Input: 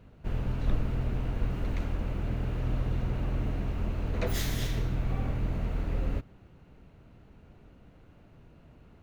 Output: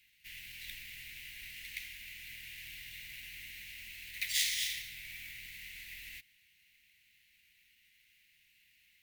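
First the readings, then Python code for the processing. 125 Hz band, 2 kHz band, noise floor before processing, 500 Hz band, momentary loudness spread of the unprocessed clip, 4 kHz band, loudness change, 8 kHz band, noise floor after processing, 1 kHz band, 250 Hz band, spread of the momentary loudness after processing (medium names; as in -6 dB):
-33.5 dB, +3.5 dB, -57 dBFS, under -40 dB, 2 LU, +6.5 dB, -7.0 dB, +7.0 dB, -69 dBFS, under -30 dB, under -30 dB, 15 LU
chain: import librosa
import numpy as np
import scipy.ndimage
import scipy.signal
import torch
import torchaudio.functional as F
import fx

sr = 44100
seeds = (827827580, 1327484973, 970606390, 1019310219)

y = fx.sample_hold(x, sr, seeds[0], rate_hz=16000.0, jitter_pct=0)
y = scipy.signal.sosfilt(scipy.signal.ellip(4, 1.0, 40, 2000.0, 'highpass', fs=sr, output='sos'), y)
y = F.gain(torch.from_numpy(y), 7.0).numpy()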